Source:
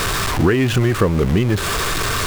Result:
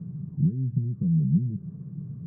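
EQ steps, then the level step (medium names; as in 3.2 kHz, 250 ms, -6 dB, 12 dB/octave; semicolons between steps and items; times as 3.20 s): Butterworth band-pass 160 Hz, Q 2.9; distance through air 290 m; 0.0 dB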